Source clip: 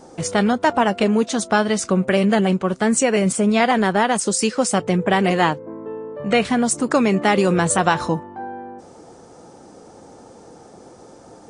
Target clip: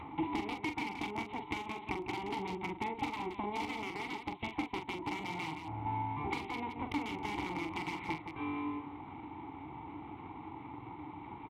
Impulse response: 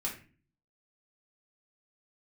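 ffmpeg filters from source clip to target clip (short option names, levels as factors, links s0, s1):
-filter_complex "[0:a]aresample=8000,aeval=exprs='abs(val(0))':c=same,aresample=44100,adynamicequalizer=threshold=0.01:dfrequency=280:dqfactor=1.9:tfrequency=280:tqfactor=1.9:attack=5:release=100:ratio=0.375:range=2.5:mode=cutabove:tftype=bell,aeval=exprs='(mod(3.16*val(0)+1,2)-1)/3.16':c=same,highpass=53,acompressor=threshold=0.0251:ratio=6,asplit=3[s0][s1][s2];[s0]bandpass=f=300:t=q:w=8,volume=1[s3];[s1]bandpass=f=870:t=q:w=8,volume=0.501[s4];[s2]bandpass=f=2240:t=q:w=8,volume=0.355[s5];[s3][s4][s5]amix=inputs=3:normalize=0,lowshelf=f=150:t=q:w=1.5:g=11,bandreject=f=2500:w=13,asplit=2[s6][s7];[s7]aecho=0:1:43.73|172:0.447|0.398[s8];[s6][s8]amix=inputs=2:normalize=0,acompressor=mode=upward:threshold=0.00251:ratio=2.5,volume=3.76"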